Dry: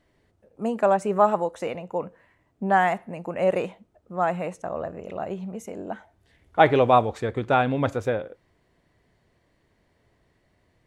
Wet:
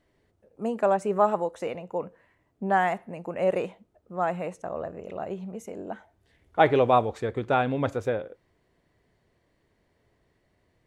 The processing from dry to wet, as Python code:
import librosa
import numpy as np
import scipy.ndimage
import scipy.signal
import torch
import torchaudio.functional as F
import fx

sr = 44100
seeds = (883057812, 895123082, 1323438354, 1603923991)

y = fx.peak_eq(x, sr, hz=420.0, db=2.5, octaves=0.71)
y = y * librosa.db_to_amplitude(-3.5)